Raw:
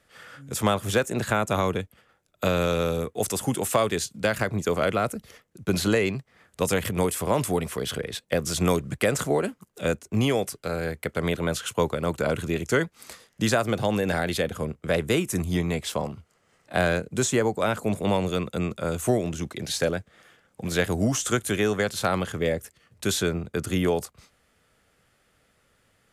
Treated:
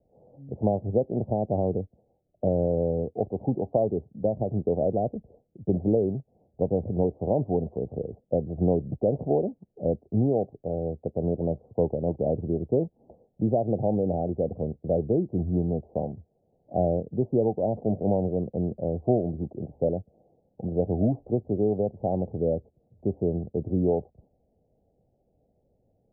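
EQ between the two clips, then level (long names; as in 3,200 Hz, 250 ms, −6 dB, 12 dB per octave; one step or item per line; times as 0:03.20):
Butterworth low-pass 780 Hz 72 dB per octave
0.0 dB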